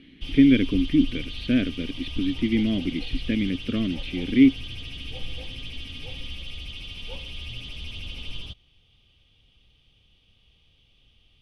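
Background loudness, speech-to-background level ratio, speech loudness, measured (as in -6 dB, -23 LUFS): -36.5 LUFS, 13.0 dB, -23.5 LUFS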